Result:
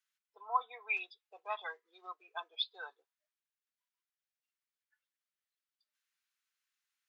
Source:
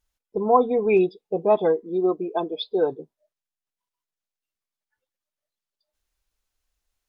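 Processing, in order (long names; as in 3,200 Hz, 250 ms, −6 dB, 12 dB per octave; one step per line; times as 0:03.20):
high-pass filter 1,400 Hz 24 dB per octave
high-shelf EQ 3,100 Hz −11 dB
level +2.5 dB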